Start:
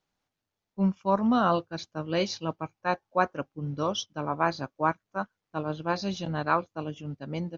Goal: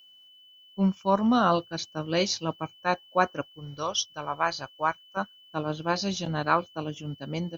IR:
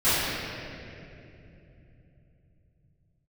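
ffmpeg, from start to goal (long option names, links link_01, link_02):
-filter_complex "[0:a]asettb=1/sr,asplit=3[link_01][link_02][link_03];[link_01]atrim=end=3.414[link_04];[link_02]atrim=start=3.41:end=5.17,asetpts=PTS-STARTPTS,afade=type=in:duration=0.004:curve=qsin,afade=type=out:start_time=1.756:duration=0.004:curve=qsin,equalizer=frequency=230:width_type=o:width=1.7:gain=-13.5[link_05];[link_03]atrim=start=5.166[link_06];[link_04][link_05]acrossfade=duration=0.004:curve1=hsin:curve2=qsin[link_07];[link_07][link_06]acrossfade=duration=0.004:curve1=qsin:curve2=hsin,aeval=exprs='val(0)+0.00158*sin(2*PI*3000*n/s)':channel_layout=same,aemphasis=mode=production:type=50fm,volume=1.5dB"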